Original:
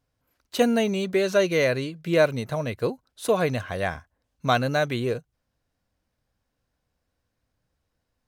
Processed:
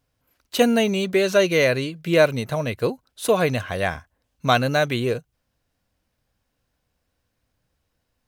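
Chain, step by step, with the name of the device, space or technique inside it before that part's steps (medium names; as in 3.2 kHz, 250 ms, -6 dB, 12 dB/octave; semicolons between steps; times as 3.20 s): presence and air boost (peaking EQ 2.8 kHz +3 dB 0.77 oct; treble shelf 9.1 kHz +5 dB); trim +3 dB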